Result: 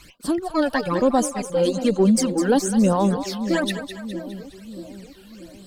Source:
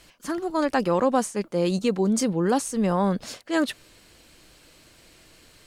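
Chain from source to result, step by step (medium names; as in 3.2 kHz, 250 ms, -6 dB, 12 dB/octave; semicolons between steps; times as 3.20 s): reverb removal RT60 1.5 s; in parallel at -3 dB: saturation -23.5 dBFS, distortion -10 dB; 2.27–3.11 s: on the sum: crackle 150 per s -45 dBFS; Chebyshev shaper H 2 -17 dB, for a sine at -8.5 dBFS; phase shifter stages 12, 1.1 Hz, lowest notch 110–2300 Hz; two-band feedback delay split 590 Hz, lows 635 ms, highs 206 ms, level -10 dB; trim +3.5 dB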